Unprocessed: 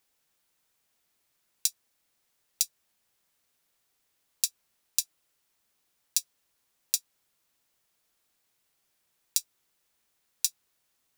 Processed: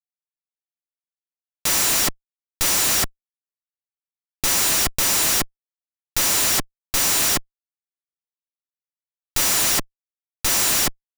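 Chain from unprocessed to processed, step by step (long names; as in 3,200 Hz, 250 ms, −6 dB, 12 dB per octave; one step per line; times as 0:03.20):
RIAA equalisation recording
reverb whose tail is shaped and stops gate 430 ms flat, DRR −6 dB
comparator with hysteresis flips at −20.5 dBFS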